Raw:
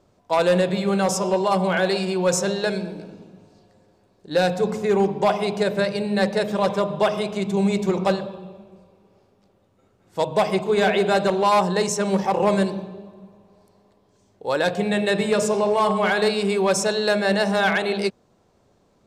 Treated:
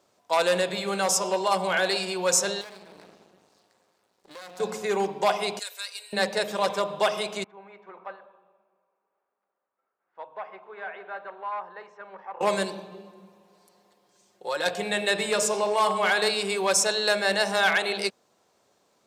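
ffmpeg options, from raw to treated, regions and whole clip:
-filter_complex "[0:a]asettb=1/sr,asplit=3[a][b][c];[a]atrim=end=2.614[d];[b]atrim=start=2.61:end=4.6,asetpts=PTS-STARTPTS,afade=t=in:d=0.004:c=qsin,afade=t=out:st=1.986:d=0.004:c=qsin,acompressor=threshold=-32dB:ratio=6:attack=3.2:release=140:knee=1:detection=peak,aeval=exprs='max(val(0),0)':c=same[e];[c]atrim=start=4.596[f];[d][e]acrossfade=d=0.004:c1=hsin:c2=qsin[g];[g][f]acrossfade=d=0.004:c1=qsin:c2=hsin,asettb=1/sr,asplit=3[h][i][j];[h]atrim=end=5.594[k];[i]atrim=start=5.59:end=6.13,asetpts=PTS-STARTPTS,afade=t=in:d=0.004:c=qsin,afade=t=out:st=0.536:d=0.004:c=qsin,highpass=f=450:w=0.5412,highpass=f=450:w=1.3066,aderivative,aecho=1:1:4.2:0.65,atrim=end_sample=23814[l];[j]atrim=start=6.126[m];[k][l]acrossfade=d=0.004:c1=hsin:c2=qsin[n];[n][m]acrossfade=d=0.004:c1=qsin:c2=hsin,asettb=1/sr,asplit=3[o][p][q];[o]atrim=end=7.444[r];[p]atrim=start=7.44:end=12.41,asetpts=PTS-STARTPTS,afade=t=in:d=0.004:c=qsin,afade=t=out:st=4.966:d=0.004:c=qsin,lowpass=f=1.5k:w=0.5412,lowpass=f=1.5k:w=1.3066,aderivative,acontrast=49[s];[q]atrim=start=12.406[t];[r][s]acrossfade=d=0.004:c1=hsin:c2=qsin[u];[u][t]acrossfade=d=0.004:c1=qsin:c2=hsin,asettb=1/sr,asplit=3[v][w][x];[v]atrim=end=12.914[y];[w]atrim=start=12.91:end=14.66,asetpts=PTS-STARTPTS,afade=t=in:d=0.004:c=qsin,afade=t=out:st=1.746:d=0.004:c=qsin,aecho=1:1:5.6:0.75,atrim=end_sample=77175,acompressor=threshold=-25dB:ratio=2:attack=3.2:release=140:knee=1:detection=peak[z];[x]atrim=start=14.656[aa];[y][z]acrossfade=d=0.004:c1=hsin:c2=qsin[ab];[ab][aa]acrossfade=d=0.004:c1=qsin:c2=hsin,highpass=f=810:p=1,highshelf=f=5.3k:g=5.5"

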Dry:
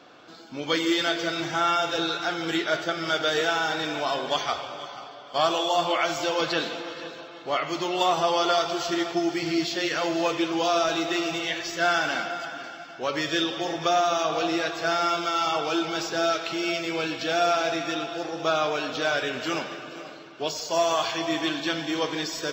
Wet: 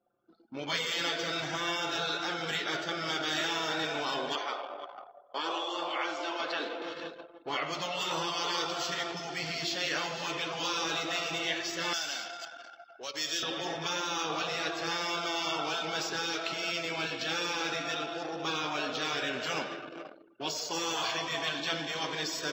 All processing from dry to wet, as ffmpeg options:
-filter_complex "[0:a]asettb=1/sr,asplit=3[a][b][c];[a]atrim=end=4.354[d];[b]atrim=start=4.35:end=6.82,asetpts=PTS-STARTPTS,afade=t=in:d=0.004:c=qsin,afade=t=out:st=2.466:d=0.004:c=qsin,highpass=f=280:w=0.5412,highpass=f=280:w=1.3066,aemphasis=mode=reproduction:type=75kf[e];[c]atrim=start=6.816[f];[d][e]acrossfade=d=0.004:c1=hsin:c2=qsin[g];[g][f]acrossfade=d=0.004:c1=qsin:c2=hsin,asettb=1/sr,asplit=3[h][i][j];[h]atrim=end=11.934[k];[i]atrim=start=11.93:end=13.43,asetpts=PTS-STARTPTS,afade=t=in:d=0.004:c=qsin,afade=t=out:st=1.496:d=0.004:c=qsin,bass=f=250:g=-10,treble=f=4k:g=7,acrossover=split=130|3000[l][m][n];[m]acompressor=threshold=-40dB:ratio=3:attack=3.2:release=140:knee=2.83:detection=peak[o];[l][o][n]amix=inputs=3:normalize=0[p];[j]atrim=start=13.426[q];[k][p]acrossfade=d=0.004:c1=hsin:c2=qsin[r];[r][q]acrossfade=d=0.004:c1=qsin:c2=hsin,anlmdn=1,afftfilt=real='re*lt(hypot(re,im),0.224)':imag='im*lt(hypot(re,im),0.224)':win_size=1024:overlap=0.75,lowshelf=f=74:g=-11.5,volume=-2.5dB"

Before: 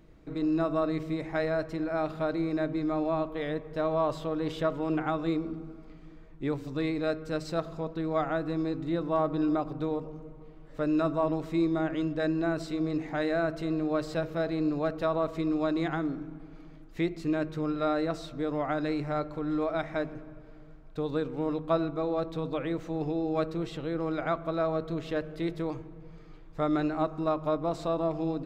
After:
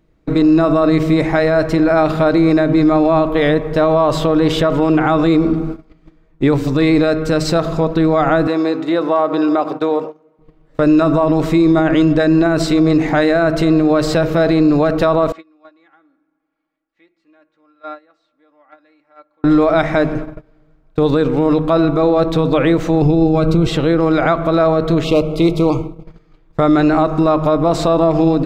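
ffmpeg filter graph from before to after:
-filter_complex "[0:a]asettb=1/sr,asplit=3[a][b][c];[a]atrim=end=8.474[d];[b]atrim=start=8.47:end=10.39,asetpts=PTS-STARTPTS,afade=t=in:d=0.004:c=qsin,afade=t=out:st=1.916:d=0.004:c=qsin,highpass=400,highshelf=f=6.1k:g=-5,acompressor=threshold=-34dB:ratio=2:attack=3.2:release=140:knee=1:detection=peak[e];[c]atrim=start=10.386[f];[d][e]acrossfade=d=0.004:c1=hsin:c2=qsin[g];[g][f]acrossfade=d=0.004:c1=qsin:c2=hsin,asettb=1/sr,asplit=3[h][i][j];[h]atrim=end=15.324[k];[i]atrim=start=15.32:end=19.44,asetpts=PTS-STARTPTS,afade=t=in:d=0.004:c=qsin,afade=t=out:st=4.116:d=0.004:c=qsin,lowpass=1.6k,aderivative,aecho=1:1:3.6:0.68,atrim=end_sample=181692[l];[j]atrim=start=19.436[m];[k][l]acrossfade=d=0.004:c1=hsin:c2=qsin[n];[n][m]acrossfade=d=0.004:c1=qsin:c2=hsin,asettb=1/sr,asplit=3[o][p][q];[o]atrim=end=23.024[r];[p]atrim=start=23.02:end=23.67,asetpts=PTS-STARTPTS,afade=t=in:d=0.004:c=qsin,afade=t=out:st=0.646:d=0.004:c=qsin,asuperstop=centerf=1800:order=20:qfactor=4.6,bass=f=250:g=10,treble=f=4k:g=1[s];[q]atrim=start=23.666[t];[r][s]acrossfade=d=0.004:c1=hsin:c2=qsin[u];[u][t]acrossfade=d=0.004:c1=qsin:c2=hsin,asettb=1/sr,asplit=3[v][w][x];[v]atrim=end=25.044[y];[w]atrim=start=25.04:end=26.06,asetpts=PTS-STARTPTS,afade=t=in:d=0.004:c=qsin,afade=t=out:st=1.016:d=0.004:c=qsin,asoftclip=type=hard:threshold=-24dB,asuperstop=centerf=1700:order=8:qfactor=2.1[z];[x]atrim=start=26.056[aa];[y][z]acrossfade=d=0.004:c1=hsin:c2=qsin[ab];[ab][aa]acrossfade=d=0.004:c1=qsin:c2=hsin,agate=range=-23dB:threshold=-43dB:ratio=16:detection=peak,alimiter=level_in=25dB:limit=-1dB:release=50:level=0:latency=1,volume=-4dB"

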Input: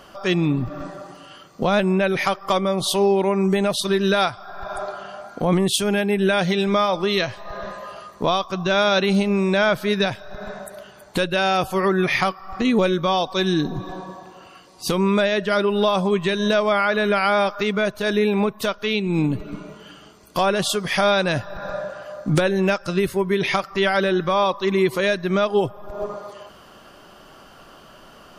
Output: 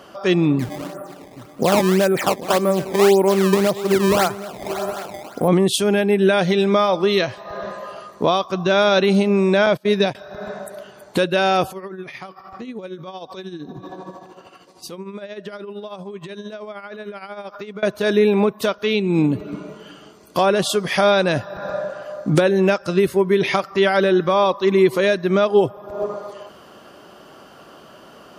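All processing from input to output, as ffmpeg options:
-filter_complex "[0:a]asettb=1/sr,asplit=3[a][b][c];[a]atrim=end=0.594[d];[b]atrim=start=0.59:end=5.48,asetpts=PTS-STARTPTS,afade=t=in:d=0.004:c=qsin,afade=t=out:st=4.886:d=0.004:c=qsin,lowpass=f=2.4k:w=0.5412,lowpass=f=2.4k:w=1.3066,acrusher=samples=18:mix=1:aa=0.000001:lfo=1:lforange=28.8:lforate=1.8,aecho=1:1:773:0.168,atrim=end_sample=215649[e];[c]atrim=start=5.476[f];[d][e]acrossfade=d=0.004:c1=hsin:c2=qsin[g];[g][f]acrossfade=d=0.004:c1=qsin:c2=hsin,asettb=1/sr,asplit=3[h][i][j];[h]atrim=end=9.664[k];[i]atrim=start=9.66:end=10.15,asetpts=PTS-STARTPTS,afade=t=in:d=0.004:c=qsin,afade=t=out:st=0.486:d=0.004:c=qsin,agate=range=-23dB:threshold=-26dB:ratio=16:release=100:detection=peak,equalizer=f=1.4k:t=o:w=0.53:g=-5.5[l];[j]atrim=start=10.146[m];[k][l]acrossfade=d=0.004:c1=hsin:c2=qsin[n];[n][m]acrossfade=d=0.004:c1=qsin:c2=hsin,asettb=1/sr,asplit=3[o][p][q];[o]atrim=end=11.704[r];[p]atrim=start=11.7:end=17.83,asetpts=PTS-STARTPTS,afade=t=in:d=0.004:c=qsin,afade=t=out:st=6.126:d=0.004:c=qsin,acompressor=threshold=-30dB:ratio=10:attack=3.2:release=140:knee=1:detection=peak,tremolo=f=13:d=0.6[s];[q]atrim=start=17.826[t];[r][s]acrossfade=d=0.004:c1=hsin:c2=qsin[u];[u][t]acrossfade=d=0.004:c1=qsin:c2=hsin,highpass=79,equalizer=f=400:w=0.76:g=5"

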